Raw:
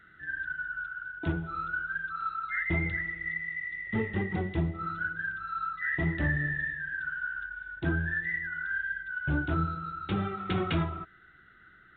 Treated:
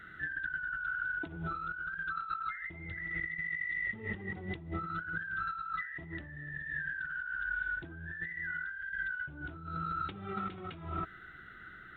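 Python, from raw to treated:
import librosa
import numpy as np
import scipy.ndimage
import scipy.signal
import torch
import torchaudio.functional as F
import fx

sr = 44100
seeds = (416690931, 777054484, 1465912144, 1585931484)

y = fx.over_compress(x, sr, threshold_db=-40.0, ratio=-1.0)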